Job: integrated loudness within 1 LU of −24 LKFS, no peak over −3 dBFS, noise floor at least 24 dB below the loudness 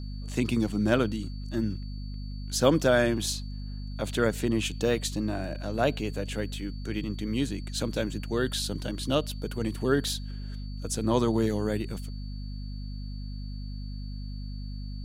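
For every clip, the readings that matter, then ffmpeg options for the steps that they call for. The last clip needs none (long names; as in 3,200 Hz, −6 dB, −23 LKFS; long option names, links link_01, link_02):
mains hum 50 Hz; hum harmonics up to 250 Hz; level of the hum −34 dBFS; interfering tone 4,500 Hz; level of the tone −52 dBFS; integrated loudness −30.0 LKFS; sample peak −7.0 dBFS; target loudness −24.0 LKFS
→ -af "bandreject=frequency=50:width_type=h:width=6,bandreject=frequency=100:width_type=h:width=6,bandreject=frequency=150:width_type=h:width=6,bandreject=frequency=200:width_type=h:width=6,bandreject=frequency=250:width_type=h:width=6"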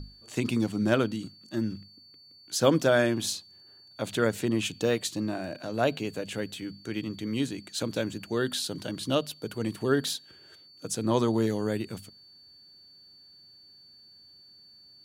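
mains hum none found; interfering tone 4,500 Hz; level of the tone −52 dBFS
→ -af "bandreject=frequency=4500:width=30"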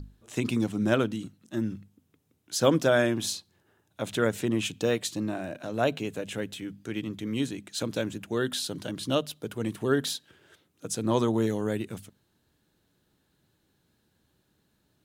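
interfering tone none found; integrated loudness −29.5 LKFS; sample peak −7.0 dBFS; target loudness −24.0 LKFS
→ -af "volume=5.5dB,alimiter=limit=-3dB:level=0:latency=1"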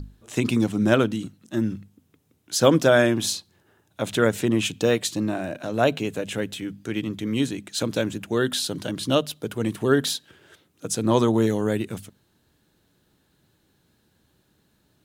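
integrated loudness −24.0 LKFS; sample peak −3.0 dBFS; background noise floor −67 dBFS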